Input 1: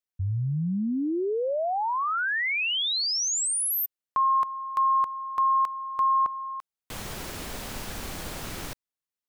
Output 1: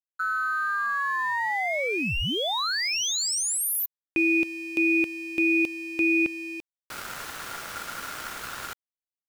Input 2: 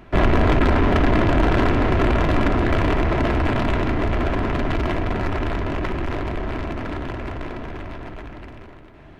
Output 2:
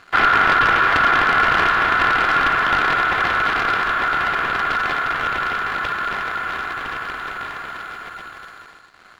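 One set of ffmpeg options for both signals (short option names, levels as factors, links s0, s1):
-af "aeval=exprs='val(0)*sin(2*PI*1400*n/s)':c=same,aeval=exprs='sgn(val(0))*max(abs(val(0))-0.00282,0)':c=same,volume=1.5"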